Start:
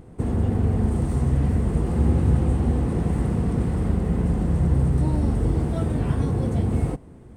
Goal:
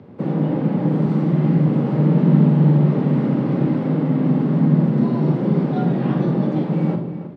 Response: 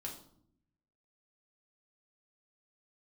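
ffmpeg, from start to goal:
-filter_complex "[0:a]lowpass=frequency=4400:width=0.5412,lowpass=frequency=4400:width=1.3066,bandreject=frequency=50:width_type=h:width=6,bandreject=frequency=100:width_type=h:width=6,bandreject=frequency=150:width_type=h:width=6,bandreject=frequency=200:width_type=h:width=6,bandreject=frequency=250:width_type=h:width=6,bandreject=frequency=300:width_type=h:width=6,bandreject=frequency=350:width_type=h:width=6,afreqshift=81,asplit=2[link_01][link_02];[link_02]adelay=314.9,volume=-11dB,highshelf=frequency=4000:gain=-7.08[link_03];[link_01][link_03]amix=inputs=2:normalize=0,asplit=2[link_04][link_05];[1:a]atrim=start_sample=2205,adelay=42[link_06];[link_05][link_06]afir=irnorm=-1:irlink=0,volume=-2.5dB[link_07];[link_04][link_07]amix=inputs=2:normalize=0,volume=2dB"

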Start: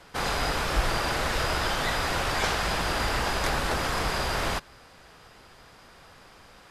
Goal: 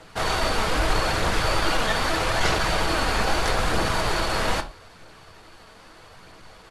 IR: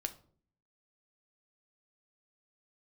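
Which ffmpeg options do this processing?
-filter_complex "[0:a]asetrate=40440,aresample=44100,atempo=1.09051,aphaser=in_gain=1:out_gain=1:delay=4.7:decay=0.29:speed=0.79:type=triangular[link_01];[1:a]atrim=start_sample=2205,atrim=end_sample=6174[link_02];[link_01][link_02]afir=irnorm=-1:irlink=0,volume=4dB"

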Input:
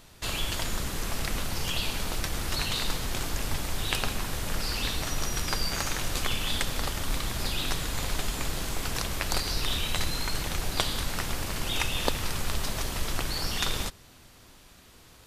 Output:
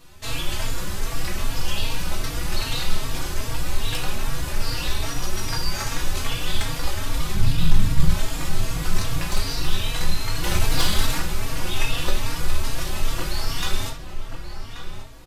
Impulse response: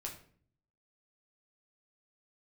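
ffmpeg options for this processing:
-filter_complex "[0:a]asettb=1/sr,asplit=3[link_01][link_02][link_03];[link_01]atrim=end=7.344[link_04];[link_02]atrim=start=7.34:end=8.1,asetpts=PTS-STARTPTS,afade=type=in:duration=0.004:curve=qsin,afade=type=out:start_time=0.756:duration=0.004:curve=qsin,lowshelf=frequency=250:width_type=q:width=3:gain=11[link_05];[link_03]atrim=start=8.096[link_06];[link_04][link_05]acrossfade=duration=0.004:curve1=hsin:curve2=qsin[link_07];[link_07][link_06]acrossfade=duration=0.004:curve1=qsin:curve2=hsin,asettb=1/sr,asplit=3[link_08][link_09][link_10];[link_08]atrim=end=10.434[link_11];[link_09]atrim=start=10.43:end=11.18,asetpts=PTS-STARTPTS,afade=type=in:duration=0.004:curve=qsin,afade=type=out:start_time=0.746:duration=0.004:curve=qsin,acontrast=83[link_12];[link_10]atrim=start=11.176[link_13];[link_11][link_12]acrossfade=duration=0.004:curve1=hsin:curve2=qsin[link_14];[link_14][link_13]acrossfade=duration=0.004:curve1=qsin:curve2=hsin,asoftclip=type=tanh:threshold=-17dB,asplit=2[link_15][link_16];[link_16]adelay=1132,lowpass=frequency=2500:poles=1,volume=-8.5dB,asplit=2[link_17][link_18];[link_18]adelay=1132,lowpass=frequency=2500:poles=1,volume=0.35,asplit=2[link_19][link_20];[link_20]adelay=1132,lowpass=frequency=2500:poles=1,volume=0.35,asplit=2[link_21][link_22];[link_22]adelay=1132,lowpass=frequency=2500:poles=1,volume=0.35[link_23];[link_15][link_17][link_19][link_21][link_23]amix=inputs=5:normalize=0[link_24];[1:a]atrim=start_sample=2205,atrim=end_sample=3969[link_25];[link_24][link_25]afir=irnorm=-1:irlink=0,asplit=2[link_26][link_27];[link_27]adelay=3.7,afreqshift=2.5[link_28];[link_26][link_28]amix=inputs=2:normalize=1,volume=7.5dB"

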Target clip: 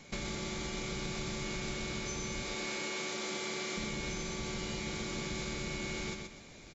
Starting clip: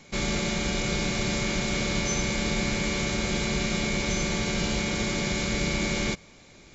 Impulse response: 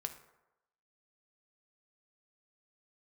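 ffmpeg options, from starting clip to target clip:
-filter_complex "[0:a]asettb=1/sr,asplit=3[link_01][link_02][link_03];[link_01]atrim=end=2.424[link_04];[link_02]atrim=start=2.42:end=3.77,asetpts=PTS-STARTPTS,afade=type=in:duration=0.004:curve=qsin,afade=type=out:start_time=1.346:duration=0.004:curve=qsin,highpass=320[link_05];[link_03]atrim=start=3.766[link_06];[link_04][link_05]acrossfade=duration=0.004:curve1=hsin:curve2=qsin[link_07];[link_07][link_06]acrossfade=duration=0.004:curve1=qsin:curve2=hsin,acompressor=threshold=-33dB:ratio=10,aecho=1:1:126|252|378|504:0.596|0.179|0.0536|0.0161,volume=-2.5dB"

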